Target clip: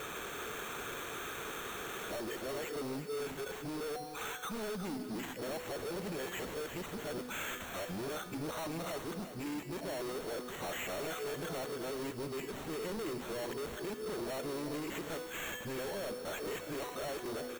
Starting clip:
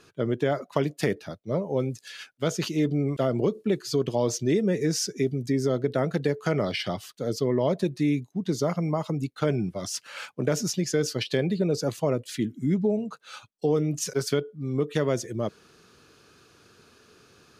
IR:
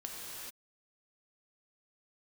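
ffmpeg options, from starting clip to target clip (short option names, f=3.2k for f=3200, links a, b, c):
-filter_complex "[0:a]areverse,highpass=120,bass=f=250:g=-3,treble=f=4k:g=2,bandreject=f=247.6:t=h:w=4,bandreject=f=495.2:t=h:w=4,bandreject=f=742.8:t=h:w=4,bandreject=f=990.4:t=h:w=4,bandreject=f=1.238k:t=h:w=4,bandreject=f=1.4856k:t=h:w=4,bandreject=f=1.7332k:t=h:w=4,bandreject=f=1.9808k:t=h:w=4,bandreject=f=2.2284k:t=h:w=4,acompressor=threshold=-48dB:ratio=2.5,asplit=2[a][b];[b]highpass=f=720:p=1,volume=32dB,asoftclip=type=tanh:threshold=-28.5dB[c];[a][c]amix=inputs=2:normalize=0,lowpass=f=5.3k:p=1,volume=-6dB,adynamicsmooth=sensitivity=4:basefreq=3.6k,acrusher=samples=9:mix=1:aa=0.000001,asoftclip=type=hard:threshold=-36dB,aecho=1:1:363:0.282,asplit=2[d][e];[1:a]atrim=start_sample=2205,highshelf=f=7.7k:g=9.5[f];[e][f]afir=irnorm=-1:irlink=0,volume=-9.5dB[g];[d][g]amix=inputs=2:normalize=0,volume=-3.5dB"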